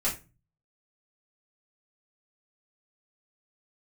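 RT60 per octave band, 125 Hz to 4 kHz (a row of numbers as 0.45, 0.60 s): 0.65, 0.45, 0.30, 0.25, 0.25, 0.20 s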